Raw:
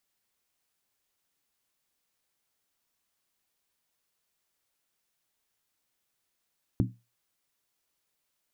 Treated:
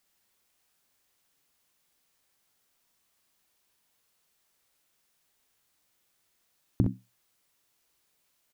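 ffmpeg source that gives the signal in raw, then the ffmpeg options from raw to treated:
-f lavfi -i "aevalsrc='0.0891*pow(10,-3*t/0.27)*sin(2*PI*118*t)+0.0668*pow(10,-3*t/0.214)*sin(2*PI*188.1*t)+0.0501*pow(10,-3*t/0.185)*sin(2*PI*252*t)+0.0376*pow(10,-3*t/0.178)*sin(2*PI*270.9*t)+0.0282*pow(10,-3*t/0.166)*sin(2*PI*313.1*t)':d=0.63:s=44100"
-filter_complex "[0:a]asplit=2[a][b];[b]alimiter=limit=-20.5dB:level=0:latency=1:release=234,volume=-2dB[c];[a][c]amix=inputs=2:normalize=0,aecho=1:1:43|63:0.282|0.501"

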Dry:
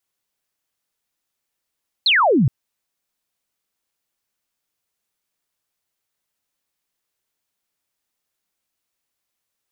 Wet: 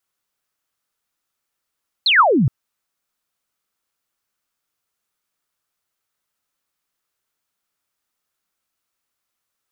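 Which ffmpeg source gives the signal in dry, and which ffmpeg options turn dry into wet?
-f lavfi -i "aevalsrc='0.251*clip(t/0.002,0,1)*clip((0.42-t)/0.002,0,1)*sin(2*PI*4400*0.42/log(110/4400)*(exp(log(110/4400)*t/0.42)-1))':d=0.42:s=44100"
-af "equalizer=f=1.3k:t=o:w=0.49:g=6.5"

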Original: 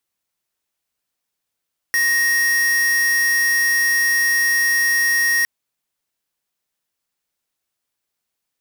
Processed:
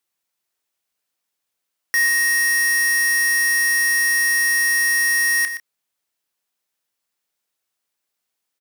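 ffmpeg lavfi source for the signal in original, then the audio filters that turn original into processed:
-f lavfi -i "aevalsrc='0.141*(2*lt(mod(1870*t,1),0.5)-1)':d=3.51:s=44100"
-filter_complex "[0:a]lowshelf=f=170:g=-9.5,asplit=2[a][b];[b]adelay=29,volume=-12dB[c];[a][c]amix=inputs=2:normalize=0,aecho=1:1:120:0.282"

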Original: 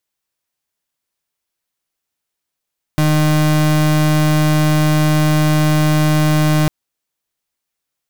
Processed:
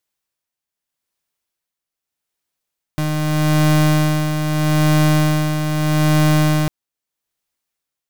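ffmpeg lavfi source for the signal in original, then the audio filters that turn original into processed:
-f lavfi -i "aevalsrc='0.224*(2*lt(mod(153*t,1),0.35)-1)':d=3.7:s=44100"
-af "tremolo=f=0.8:d=0.54"

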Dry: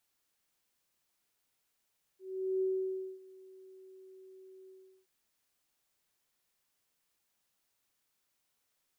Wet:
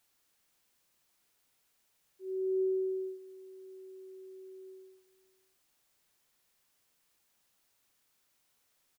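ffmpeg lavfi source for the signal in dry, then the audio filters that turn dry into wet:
-f lavfi -i "aevalsrc='0.0398*sin(2*PI*378*t)':d=2.876:s=44100,afade=t=in:d=0.424,afade=t=out:st=0.424:d=0.574:silence=0.0668,afade=t=out:st=2.5:d=0.376"
-filter_complex "[0:a]asplit=2[a][b];[b]alimiter=level_in=15dB:limit=-24dB:level=0:latency=1,volume=-15dB,volume=-1.5dB[c];[a][c]amix=inputs=2:normalize=0,aecho=1:1:530:0.0891"

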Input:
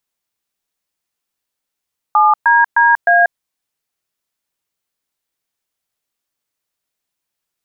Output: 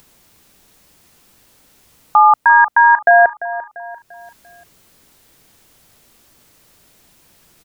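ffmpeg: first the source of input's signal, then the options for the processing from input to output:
-f lavfi -i "aevalsrc='0.316*clip(min(mod(t,0.307),0.188-mod(t,0.307))/0.002,0,1)*(eq(floor(t/0.307),0)*(sin(2*PI*852*mod(t,0.307))+sin(2*PI*1209*mod(t,0.307)))+eq(floor(t/0.307),1)*(sin(2*PI*941*mod(t,0.307))+sin(2*PI*1633*mod(t,0.307)))+eq(floor(t/0.307),2)*(sin(2*PI*941*mod(t,0.307))+sin(2*PI*1633*mod(t,0.307)))+eq(floor(t/0.307),3)*(sin(2*PI*697*mod(t,0.307))+sin(2*PI*1633*mod(t,0.307))))':d=1.228:s=44100"
-af "lowshelf=f=470:g=11,acompressor=mode=upward:threshold=-31dB:ratio=2.5,aecho=1:1:344|688|1032|1376:0.178|0.0765|0.0329|0.0141"

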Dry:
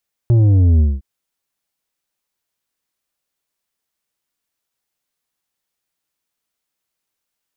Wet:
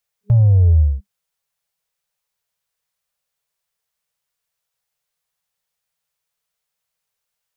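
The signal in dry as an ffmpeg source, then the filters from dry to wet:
-f lavfi -i "aevalsrc='0.335*clip((0.71-t)/0.21,0,1)*tanh(2.37*sin(2*PI*120*0.71/log(65/120)*(exp(log(65/120)*t/0.71)-1)))/tanh(2.37)':d=0.71:s=44100"
-af "afftfilt=real='re*(1-between(b*sr/4096,200,410))':imag='im*(1-between(b*sr/4096,200,410))':win_size=4096:overlap=0.75"

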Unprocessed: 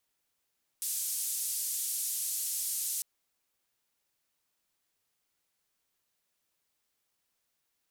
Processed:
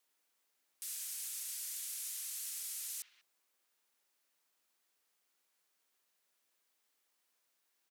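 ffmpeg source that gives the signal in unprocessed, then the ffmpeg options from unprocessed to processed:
-f lavfi -i "anoisesrc=c=white:d=2.2:r=44100:seed=1,highpass=f=7300,lowpass=f=12000,volume=-22.5dB"
-filter_complex "[0:a]highpass=260,acrossover=split=400|880|2500[a][b][c][d];[c]aecho=1:1:32.07|67.06|192.4:0.316|0.562|0.501[e];[d]alimiter=level_in=10.5dB:limit=-24dB:level=0:latency=1,volume=-10.5dB[f];[a][b][e][f]amix=inputs=4:normalize=0"

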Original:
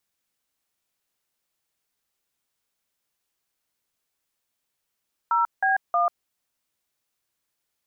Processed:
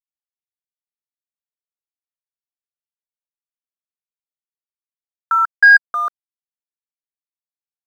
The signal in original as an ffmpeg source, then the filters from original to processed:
-f lavfi -i "aevalsrc='0.0891*clip(min(mod(t,0.315),0.141-mod(t,0.315))/0.002,0,1)*(eq(floor(t/0.315),0)*(sin(2*PI*941*mod(t,0.315))+sin(2*PI*1336*mod(t,0.315)))+eq(floor(t/0.315),1)*(sin(2*PI*770*mod(t,0.315))+sin(2*PI*1633*mod(t,0.315)))+eq(floor(t/0.315),2)*(sin(2*PI*697*mod(t,0.315))+sin(2*PI*1209*mod(t,0.315))))':d=0.945:s=44100"
-af "firequalizer=gain_entry='entry(420,0);entry(730,-19);entry(1600,15);entry(2500,-22)':delay=0.05:min_phase=1,acontrast=39,aeval=exprs='sgn(val(0))*max(abs(val(0))-0.00708,0)':c=same"

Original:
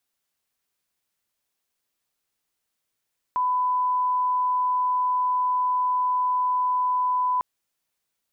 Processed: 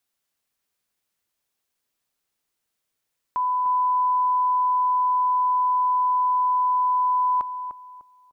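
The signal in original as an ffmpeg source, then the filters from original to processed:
-f lavfi -i "sine=f=1000:d=4.05:r=44100,volume=-1.94dB"
-filter_complex "[0:a]asplit=2[a][b];[b]adelay=300,lowpass=f=1.1k:p=1,volume=-7.5dB,asplit=2[c][d];[d]adelay=300,lowpass=f=1.1k:p=1,volume=0.35,asplit=2[e][f];[f]adelay=300,lowpass=f=1.1k:p=1,volume=0.35,asplit=2[g][h];[h]adelay=300,lowpass=f=1.1k:p=1,volume=0.35[i];[a][c][e][g][i]amix=inputs=5:normalize=0"

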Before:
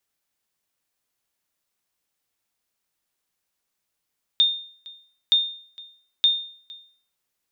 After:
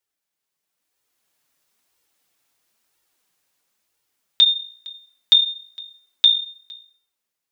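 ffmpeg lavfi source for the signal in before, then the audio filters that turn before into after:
-f lavfi -i "aevalsrc='0.282*(sin(2*PI*3640*mod(t,0.92))*exp(-6.91*mod(t,0.92)/0.51)+0.0708*sin(2*PI*3640*max(mod(t,0.92)-0.46,0))*exp(-6.91*max(mod(t,0.92)-0.46,0)/0.51))':d=2.76:s=44100"
-af "lowshelf=f=66:g=-9,dynaudnorm=f=230:g=9:m=13dB,flanger=delay=2.1:depth=5.3:regen=-17:speed=1:shape=sinusoidal"

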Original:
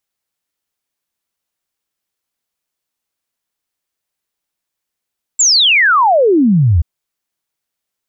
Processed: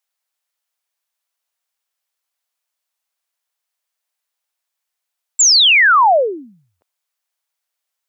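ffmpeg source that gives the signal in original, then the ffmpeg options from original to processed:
-f lavfi -i "aevalsrc='0.447*clip(min(t,1.43-t)/0.01,0,1)*sin(2*PI*7700*1.43/log(74/7700)*(exp(log(74/7700)*t/1.43)-1))':d=1.43:s=44100"
-af "highpass=f=560:w=0.5412,highpass=f=560:w=1.3066"

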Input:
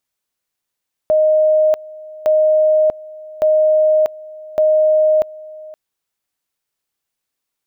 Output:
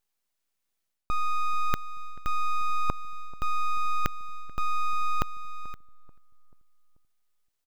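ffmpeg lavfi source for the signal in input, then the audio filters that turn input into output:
-f lavfi -i "aevalsrc='pow(10,(-9.5-21.5*gte(mod(t,1.16),0.64))/20)*sin(2*PI*620*t)':d=4.64:s=44100"
-filter_complex "[0:a]areverse,acompressor=threshold=-24dB:ratio=4,areverse,aeval=exprs='abs(val(0))':c=same,asplit=2[a][b];[b]adelay=436,lowpass=f=890:p=1,volume=-20dB,asplit=2[c][d];[d]adelay=436,lowpass=f=890:p=1,volume=0.53,asplit=2[e][f];[f]adelay=436,lowpass=f=890:p=1,volume=0.53,asplit=2[g][h];[h]adelay=436,lowpass=f=890:p=1,volume=0.53[i];[a][c][e][g][i]amix=inputs=5:normalize=0"

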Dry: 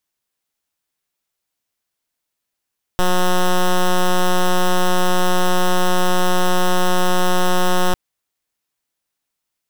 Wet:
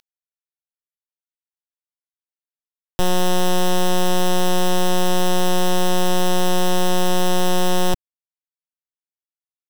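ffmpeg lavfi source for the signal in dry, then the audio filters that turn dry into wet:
-f lavfi -i "aevalsrc='0.2*(2*lt(mod(181*t,1),0.08)-1)':d=4.95:s=44100"
-filter_complex "[0:a]equalizer=f=1.3k:w=1.8:g=-9.5,acrossover=split=200|6600[a][b][c];[b]acompressor=mode=upward:threshold=-42dB:ratio=2.5[d];[a][d][c]amix=inputs=3:normalize=0,acrusher=bits=7:mix=0:aa=0.000001"

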